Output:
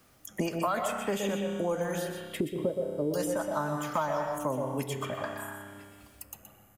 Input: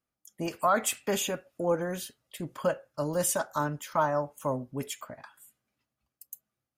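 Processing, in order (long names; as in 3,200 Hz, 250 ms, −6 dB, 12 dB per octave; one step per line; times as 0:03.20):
0:02.40–0:03.14: low-pass with resonance 410 Hz, resonance Q 4.9
tuned comb filter 100 Hz, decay 1.4 s, harmonics all, mix 60%
single-tap delay 121 ms −9.5 dB
convolution reverb RT60 0.65 s, pre-delay 119 ms, DRR 4 dB
multiband upward and downward compressor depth 100%
level +3.5 dB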